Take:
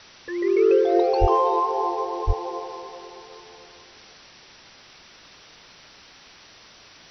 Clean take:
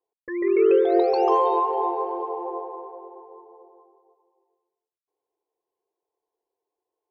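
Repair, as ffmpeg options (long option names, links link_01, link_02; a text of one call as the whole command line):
ffmpeg -i in.wav -filter_complex "[0:a]asplit=3[link_01][link_02][link_03];[link_01]afade=type=out:start_time=1.2:duration=0.02[link_04];[link_02]highpass=frequency=140:width=0.5412,highpass=frequency=140:width=1.3066,afade=type=in:start_time=1.2:duration=0.02,afade=type=out:start_time=1.32:duration=0.02[link_05];[link_03]afade=type=in:start_time=1.32:duration=0.02[link_06];[link_04][link_05][link_06]amix=inputs=3:normalize=0,asplit=3[link_07][link_08][link_09];[link_07]afade=type=out:start_time=2.26:duration=0.02[link_10];[link_08]highpass=frequency=140:width=0.5412,highpass=frequency=140:width=1.3066,afade=type=in:start_time=2.26:duration=0.02,afade=type=out:start_time=2.38:duration=0.02[link_11];[link_09]afade=type=in:start_time=2.38:duration=0.02[link_12];[link_10][link_11][link_12]amix=inputs=3:normalize=0,afwtdn=0.0063,asetnsamples=nb_out_samples=441:pad=0,asendcmd='4.78 volume volume -9.5dB',volume=0dB" out.wav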